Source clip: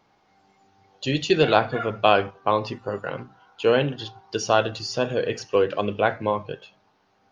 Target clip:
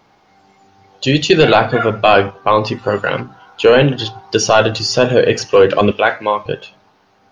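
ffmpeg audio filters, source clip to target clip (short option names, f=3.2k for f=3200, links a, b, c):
-filter_complex "[0:a]asettb=1/sr,asplit=3[a][b][c];[a]atrim=end=2.784[d];[b]atrim=start=2.78:end=3.21,asetpts=PTS-STARTPTS,afade=t=in:d=0.004:c=qsin,afade=t=out:st=0.426:d=0.004:c=qsin,equalizer=f=3.3k:w=0.58:g=7.5[e];[c]atrim=start=3.206[f];[d][e]acrossfade=d=0.004:c1=hsin:c2=qsin[g];[g][f]acrossfade=d=0.004:c1=qsin:c2=hsin,asettb=1/sr,asplit=3[h][i][j];[h]atrim=end=5.914[k];[i]atrim=start=5.91:end=6.46,asetpts=PTS-STARTPTS,afade=t=in:d=0.004:c=qsin,afade=t=out:st=0.546:d=0.004:c=qsin,highpass=f=1.1k:p=1[l];[j]atrim=start=6.456[m];[k][l]acrossfade=d=0.004:c1=hsin:c2=qsin[n];[n][m]acrossfade=d=0.004:c1=qsin:c2=hsin,dynaudnorm=f=210:g=11:m=11.5dB,apsyclip=12dB,volume=-2dB"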